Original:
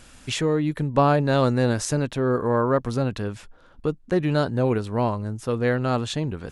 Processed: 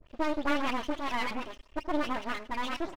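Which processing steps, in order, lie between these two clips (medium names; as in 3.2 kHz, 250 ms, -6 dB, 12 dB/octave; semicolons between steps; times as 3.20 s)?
delay that grows with frequency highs late, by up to 656 ms; flange 0.54 Hz, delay 0.4 ms, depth 9.8 ms, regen -89%; tempo 1.1×; low-pass 1.9 kHz 24 dB/octave; peaking EQ 91 Hz -12 dB 0.27 oct; comb 6.6 ms, depth 47%; feedback delay 154 ms, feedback 38%, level -20 dB; speed mistake 7.5 ips tape played at 15 ips; half-wave rectifier; warped record 33 1/3 rpm, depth 160 cents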